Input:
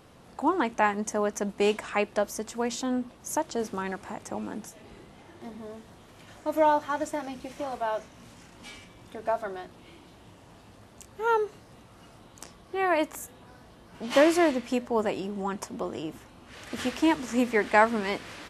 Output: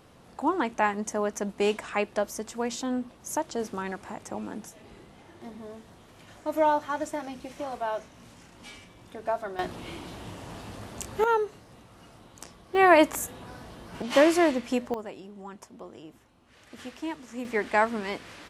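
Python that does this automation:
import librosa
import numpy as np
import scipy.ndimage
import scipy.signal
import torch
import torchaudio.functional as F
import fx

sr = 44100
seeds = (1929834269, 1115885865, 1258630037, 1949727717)

y = fx.gain(x, sr, db=fx.steps((0.0, -1.0), (9.59, 11.0), (11.24, 0.0), (12.75, 7.5), (14.02, 0.5), (14.94, -11.0), (17.45, -3.0)))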